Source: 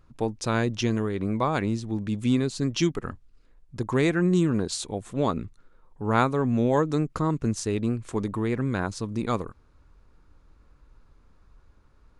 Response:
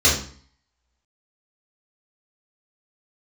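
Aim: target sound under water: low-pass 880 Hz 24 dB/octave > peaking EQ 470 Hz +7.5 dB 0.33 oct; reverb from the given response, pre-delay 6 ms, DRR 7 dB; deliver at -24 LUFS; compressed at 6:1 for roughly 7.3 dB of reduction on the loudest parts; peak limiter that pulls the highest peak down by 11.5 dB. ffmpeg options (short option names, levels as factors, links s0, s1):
-filter_complex "[0:a]acompressor=threshold=0.0562:ratio=6,alimiter=level_in=1.58:limit=0.0631:level=0:latency=1,volume=0.631,asplit=2[s0][s1];[1:a]atrim=start_sample=2205,adelay=6[s2];[s1][s2]afir=irnorm=-1:irlink=0,volume=0.0473[s3];[s0][s3]amix=inputs=2:normalize=0,lowpass=f=880:w=0.5412,lowpass=f=880:w=1.3066,equalizer=f=470:t=o:w=0.33:g=7.5,volume=3.76"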